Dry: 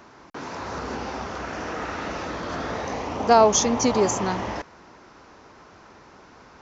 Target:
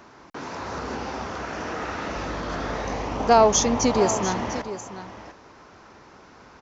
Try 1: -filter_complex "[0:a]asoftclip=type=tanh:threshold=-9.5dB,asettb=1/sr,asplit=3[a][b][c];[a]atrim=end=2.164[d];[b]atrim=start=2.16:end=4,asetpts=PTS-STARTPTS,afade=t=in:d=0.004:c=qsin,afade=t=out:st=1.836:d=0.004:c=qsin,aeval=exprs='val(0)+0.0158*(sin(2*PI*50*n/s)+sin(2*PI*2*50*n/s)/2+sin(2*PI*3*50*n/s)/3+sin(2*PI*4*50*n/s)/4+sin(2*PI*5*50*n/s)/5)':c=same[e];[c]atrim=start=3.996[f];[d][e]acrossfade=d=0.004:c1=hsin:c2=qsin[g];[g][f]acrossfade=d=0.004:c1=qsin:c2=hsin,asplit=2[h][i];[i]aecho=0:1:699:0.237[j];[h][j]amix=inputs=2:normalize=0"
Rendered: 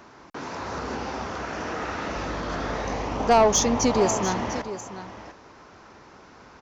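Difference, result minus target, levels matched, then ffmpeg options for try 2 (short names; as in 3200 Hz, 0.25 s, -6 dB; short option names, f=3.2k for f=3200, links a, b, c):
soft clip: distortion +14 dB
-filter_complex "[0:a]asoftclip=type=tanh:threshold=-0.5dB,asettb=1/sr,asplit=3[a][b][c];[a]atrim=end=2.164[d];[b]atrim=start=2.16:end=4,asetpts=PTS-STARTPTS,afade=t=in:d=0.004:c=qsin,afade=t=out:st=1.836:d=0.004:c=qsin,aeval=exprs='val(0)+0.0158*(sin(2*PI*50*n/s)+sin(2*PI*2*50*n/s)/2+sin(2*PI*3*50*n/s)/3+sin(2*PI*4*50*n/s)/4+sin(2*PI*5*50*n/s)/5)':c=same[e];[c]atrim=start=3.996[f];[d][e]acrossfade=d=0.004:c1=hsin:c2=qsin[g];[g][f]acrossfade=d=0.004:c1=qsin:c2=hsin,asplit=2[h][i];[i]aecho=0:1:699:0.237[j];[h][j]amix=inputs=2:normalize=0"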